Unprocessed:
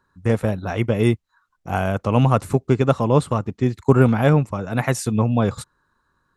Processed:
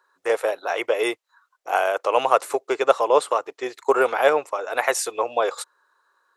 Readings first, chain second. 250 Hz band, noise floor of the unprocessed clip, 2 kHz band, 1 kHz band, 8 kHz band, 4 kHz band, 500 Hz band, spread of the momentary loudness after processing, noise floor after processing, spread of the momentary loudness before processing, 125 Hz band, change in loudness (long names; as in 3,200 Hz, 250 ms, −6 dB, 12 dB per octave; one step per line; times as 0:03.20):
−15.5 dB, −70 dBFS, +3.5 dB, +3.5 dB, +3.5 dB, +3.5 dB, +1.0 dB, 8 LU, −75 dBFS, 8 LU, below −35 dB, −2.5 dB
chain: inverse Chebyshev high-pass filter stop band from 220 Hz, stop band 40 dB
level +3.5 dB